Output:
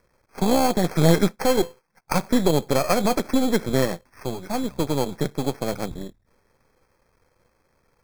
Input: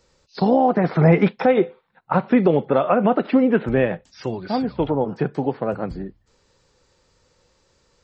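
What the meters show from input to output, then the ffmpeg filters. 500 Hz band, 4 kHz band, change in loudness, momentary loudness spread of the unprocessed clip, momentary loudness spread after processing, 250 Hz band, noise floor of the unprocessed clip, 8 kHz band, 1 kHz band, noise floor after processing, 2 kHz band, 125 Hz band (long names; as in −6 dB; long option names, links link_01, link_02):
−4.0 dB, +9.5 dB, −3.0 dB, 12 LU, 12 LU, −3.5 dB, −63 dBFS, can't be measured, −3.5 dB, −68 dBFS, −2.5 dB, −3.0 dB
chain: -af "aeval=exprs='if(lt(val(0),0),0.251*val(0),val(0))':channel_layout=same,acrusher=samples=12:mix=1:aa=0.000001,asuperstop=centerf=2900:order=12:qfactor=5.7"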